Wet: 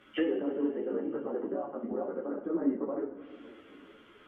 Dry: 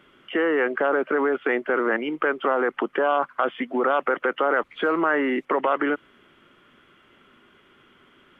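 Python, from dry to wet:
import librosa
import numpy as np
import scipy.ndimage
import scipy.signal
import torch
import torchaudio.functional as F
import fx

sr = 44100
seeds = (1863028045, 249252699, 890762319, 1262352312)

y = fx.stretch_grains(x, sr, factor=0.51, grain_ms=38.0)
y = fx.env_lowpass_down(y, sr, base_hz=330.0, full_db=-24.0)
y = fx.rev_double_slope(y, sr, seeds[0], early_s=0.5, late_s=4.1, knee_db=-18, drr_db=1.0)
y = fx.ensemble(y, sr)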